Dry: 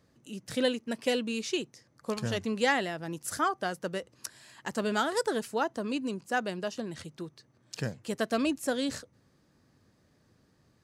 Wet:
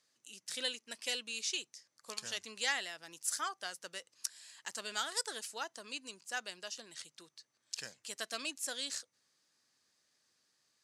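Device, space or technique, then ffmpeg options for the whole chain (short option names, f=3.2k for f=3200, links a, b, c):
piezo pickup straight into a mixer: -af "lowpass=7.6k,aderivative,volume=5.5dB"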